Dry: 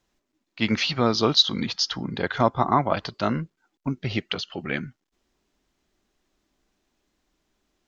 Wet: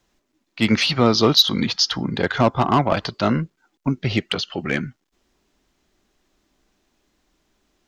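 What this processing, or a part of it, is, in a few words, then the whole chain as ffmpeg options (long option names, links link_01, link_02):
one-band saturation: -filter_complex "[0:a]acrossover=split=490|4400[link_01][link_02][link_03];[link_02]asoftclip=type=tanh:threshold=-19.5dB[link_04];[link_01][link_04][link_03]amix=inputs=3:normalize=0,volume=6dB"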